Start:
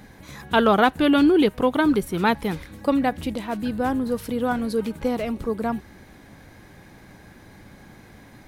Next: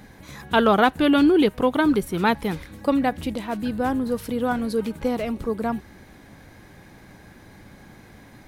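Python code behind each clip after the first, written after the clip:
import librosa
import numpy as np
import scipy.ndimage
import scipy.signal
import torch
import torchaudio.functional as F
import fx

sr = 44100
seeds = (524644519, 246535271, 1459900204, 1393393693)

y = x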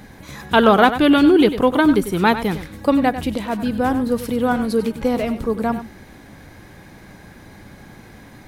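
y = x + 10.0 ** (-12.0 / 20.0) * np.pad(x, (int(97 * sr / 1000.0), 0))[:len(x)]
y = y * librosa.db_to_amplitude(4.5)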